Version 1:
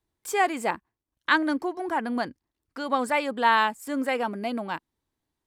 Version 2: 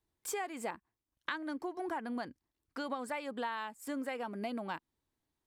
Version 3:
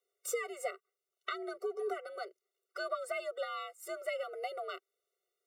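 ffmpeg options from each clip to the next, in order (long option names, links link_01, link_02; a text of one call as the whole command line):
ffmpeg -i in.wav -af "acompressor=threshold=-31dB:ratio=12,volume=-3.5dB" out.wav
ffmpeg -i in.wav -af "afreqshift=60,afftfilt=real='re*eq(mod(floor(b*sr/1024/380),2),1)':imag='im*eq(mod(floor(b*sr/1024/380),2),1)':win_size=1024:overlap=0.75,volume=4dB" out.wav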